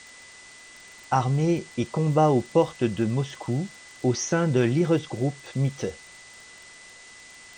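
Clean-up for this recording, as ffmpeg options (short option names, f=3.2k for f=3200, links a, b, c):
-af "adeclick=t=4,bandreject=f=2k:w=30,afwtdn=0.005"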